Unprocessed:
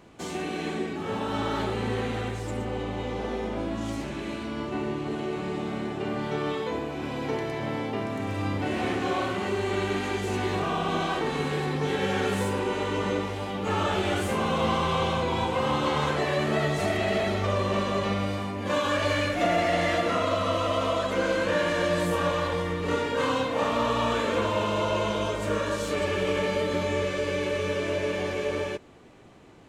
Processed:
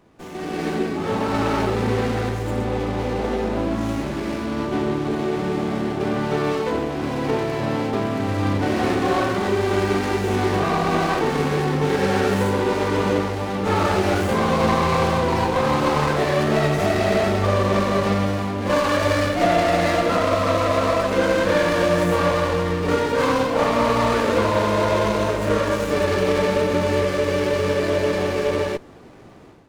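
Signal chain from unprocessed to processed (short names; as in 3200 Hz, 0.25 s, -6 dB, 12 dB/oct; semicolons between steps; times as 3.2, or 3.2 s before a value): AGC gain up to 11 dB; running maximum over 9 samples; gain -3 dB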